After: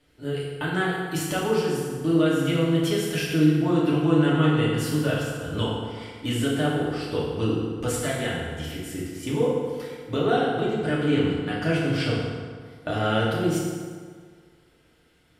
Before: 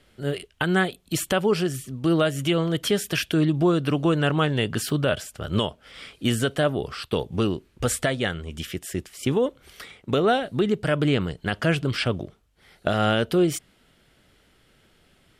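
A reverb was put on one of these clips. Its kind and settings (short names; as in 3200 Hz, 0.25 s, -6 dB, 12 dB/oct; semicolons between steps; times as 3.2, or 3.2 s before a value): FDN reverb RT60 1.8 s, low-frequency decay 0.95×, high-frequency decay 0.65×, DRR -7 dB; gain -9.5 dB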